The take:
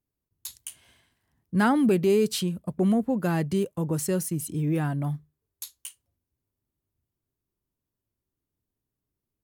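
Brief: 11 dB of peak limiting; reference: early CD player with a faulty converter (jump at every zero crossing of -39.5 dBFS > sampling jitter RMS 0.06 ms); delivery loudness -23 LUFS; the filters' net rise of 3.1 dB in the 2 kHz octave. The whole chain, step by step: peaking EQ 2 kHz +4.5 dB; peak limiter -21 dBFS; jump at every zero crossing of -39.5 dBFS; sampling jitter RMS 0.06 ms; trim +6.5 dB

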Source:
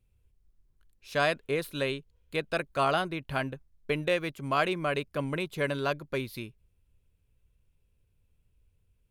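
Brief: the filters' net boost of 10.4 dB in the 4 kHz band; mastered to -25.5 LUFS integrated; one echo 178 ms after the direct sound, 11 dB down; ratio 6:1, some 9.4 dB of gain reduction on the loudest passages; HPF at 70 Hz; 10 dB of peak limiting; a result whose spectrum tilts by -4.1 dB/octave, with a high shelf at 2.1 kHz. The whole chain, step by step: high-pass 70 Hz; treble shelf 2.1 kHz +5 dB; peaking EQ 4 kHz +8.5 dB; compression 6:1, threshold -29 dBFS; peak limiter -24.5 dBFS; delay 178 ms -11 dB; trim +11.5 dB

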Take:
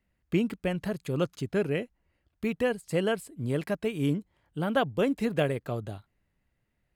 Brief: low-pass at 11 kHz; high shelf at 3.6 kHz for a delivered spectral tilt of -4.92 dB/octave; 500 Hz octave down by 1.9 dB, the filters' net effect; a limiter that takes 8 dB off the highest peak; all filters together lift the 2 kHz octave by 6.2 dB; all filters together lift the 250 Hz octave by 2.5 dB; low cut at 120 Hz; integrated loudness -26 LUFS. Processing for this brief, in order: high-pass 120 Hz; low-pass 11 kHz; peaking EQ 250 Hz +4.5 dB; peaking EQ 500 Hz -4 dB; peaking EQ 2 kHz +6 dB; treble shelf 3.6 kHz +8 dB; trim +4 dB; peak limiter -13 dBFS

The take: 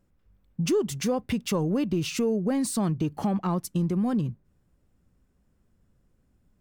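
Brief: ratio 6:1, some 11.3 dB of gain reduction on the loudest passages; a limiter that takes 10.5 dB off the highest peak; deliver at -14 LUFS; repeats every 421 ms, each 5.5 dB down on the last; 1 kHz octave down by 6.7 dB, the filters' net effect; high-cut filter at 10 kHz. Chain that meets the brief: low-pass 10 kHz; peaking EQ 1 kHz -9 dB; compression 6:1, threshold -35 dBFS; peak limiter -35 dBFS; feedback delay 421 ms, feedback 53%, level -5.5 dB; trim +27.5 dB

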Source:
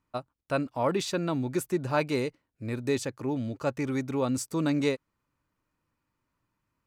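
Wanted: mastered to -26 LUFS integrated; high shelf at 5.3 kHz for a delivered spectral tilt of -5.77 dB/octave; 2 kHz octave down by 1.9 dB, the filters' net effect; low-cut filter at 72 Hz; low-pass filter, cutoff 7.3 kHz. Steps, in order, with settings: high-pass 72 Hz; low-pass 7.3 kHz; peaking EQ 2 kHz -3 dB; treble shelf 5.3 kHz +3 dB; trim +4.5 dB

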